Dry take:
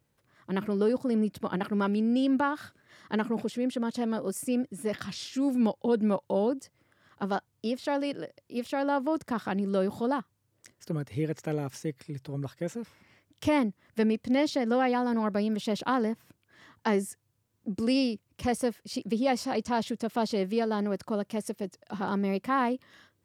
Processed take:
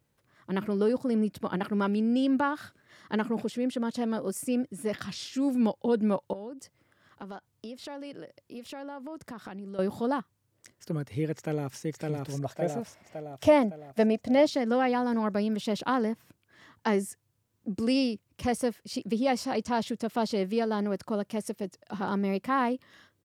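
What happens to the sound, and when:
0:06.33–0:09.79: downward compressor 4 to 1, threshold −39 dBFS
0:11.35–0:11.82: delay throw 560 ms, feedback 55%, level −2 dB
0:12.40–0:14.47: parametric band 670 Hz +14.5 dB 0.42 octaves

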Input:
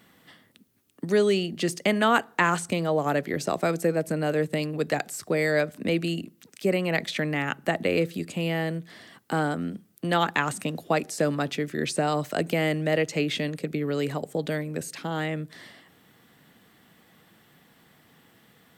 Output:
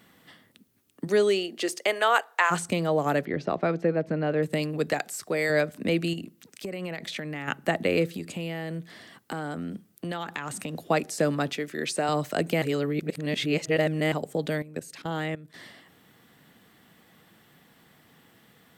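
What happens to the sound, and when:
0:01.07–0:02.50: high-pass filter 210 Hz → 600 Hz 24 dB per octave
0:03.25–0:04.43: high-frequency loss of the air 260 metres
0:04.93–0:05.50: low-shelf EQ 290 Hz −8.5 dB
0:06.13–0:07.48: downward compressor 10 to 1, threshold −30 dBFS
0:08.12–0:10.80: downward compressor, threshold −29 dBFS
0:11.53–0:12.09: high-pass filter 370 Hz 6 dB per octave
0:12.62–0:14.12: reverse
0:14.62–0:15.54: output level in coarse steps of 15 dB

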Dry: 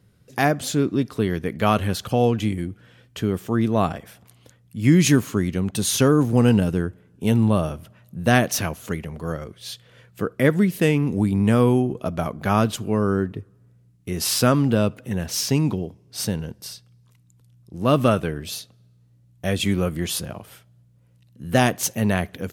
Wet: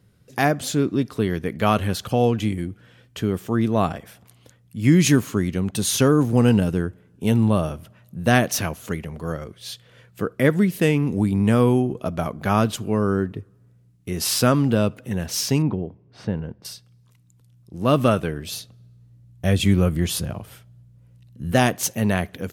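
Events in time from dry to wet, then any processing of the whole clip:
0:15.62–0:16.65: low-pass filter 1,800 Hz
0:18.52–0:21.52: low-shelf EQ 150 Hz +10.5 dB

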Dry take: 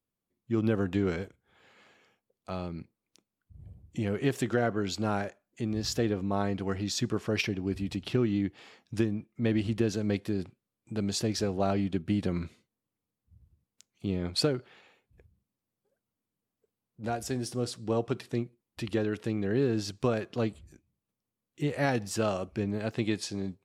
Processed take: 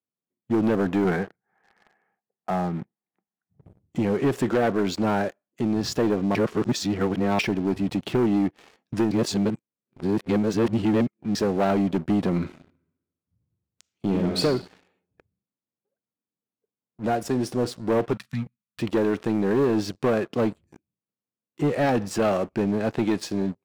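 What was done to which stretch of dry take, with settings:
0:01.04–0:03.63: loudspeaker in its box 110–2,100 Hz, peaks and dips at 180 Hz +4 dB, 280 Hz −7 dB, 540 Hz −6 dB, 770 Hz +10 dB, 1,800 Hz +10 dB
0:06.35–0:07.39: reverse
0:09.11–0:11.35: reverse
0:12.42–0:14.42: thrown reverb, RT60 1.1 s, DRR 3.5 dB
0:18.13–0:18.80: elliptic band-stop filter 210–1,200 Hz
whole clip: high-pass filter 150 Hz 12 dB per octave; high-shelf EQ 2,300 Hz −11 dB; leveller curve on the samples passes 3

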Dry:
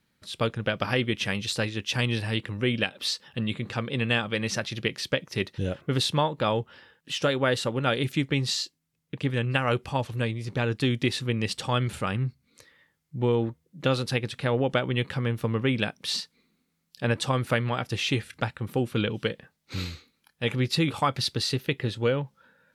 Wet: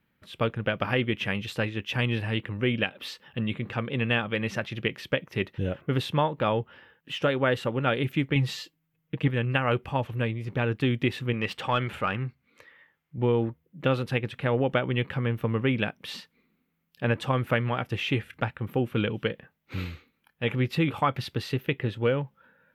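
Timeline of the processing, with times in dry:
0:08.35–0:09.28: comb filter 6.3 ms, depth 80%
0:11.33–0:13.18: mid-hump overdrive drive 10 dB, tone 4,100 Hz, clips at −13.5 dBFS
whole clip: flat-topped bell 6,400 Hz −13.5 dB

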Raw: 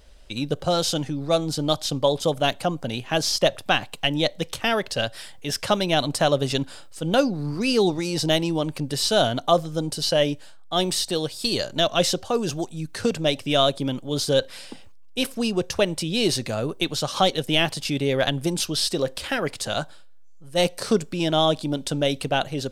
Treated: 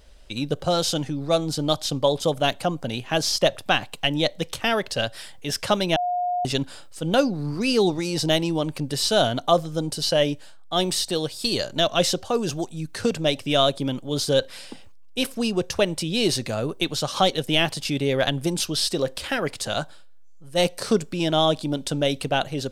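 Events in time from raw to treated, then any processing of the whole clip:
0:05.96–0:06.45: beep over 715 Hz −21.5 dBFS

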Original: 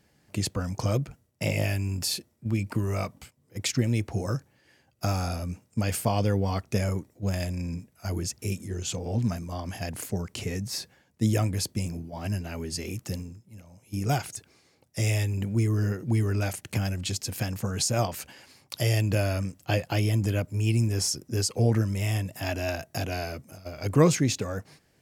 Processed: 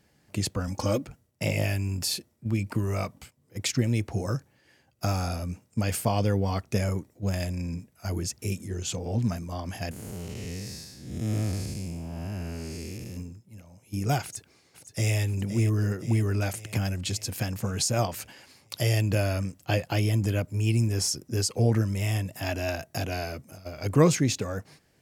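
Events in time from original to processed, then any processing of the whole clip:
0:00.67–0:01.07: comb filter 3.6 ms, depth 85%
0:09.91–0:13.17: spectrum smeared in time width 317 ms
0:14.22–0:15.17: delay throw 520 ms, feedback 60%, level −10.5 dB

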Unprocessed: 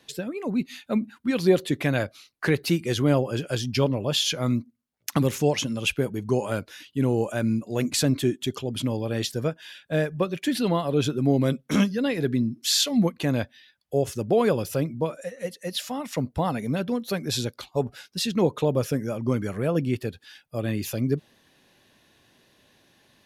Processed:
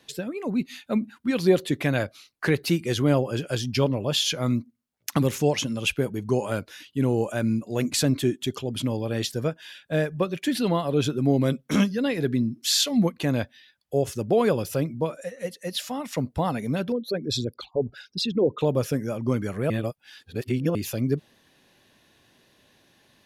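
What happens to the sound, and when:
0:16.92–0:18.61: spectral envelope exaggerated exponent 2
0:19.70–0:20.75: reverse

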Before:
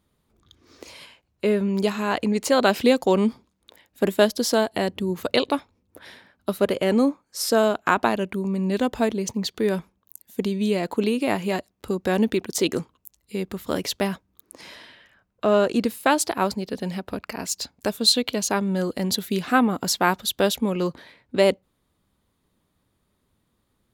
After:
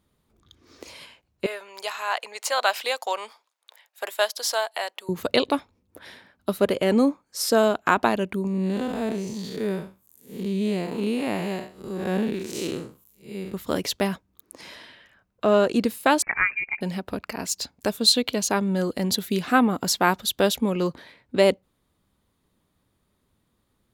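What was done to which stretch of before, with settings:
0:01.46–0:05.09: high-pass filter 680 Hz 24 dB per octave
0:08.47–0:13.54: spectrum smeared in time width 170 ms
0:16.22–0:16.81: voice inversion scrambler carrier 2,600 Hz

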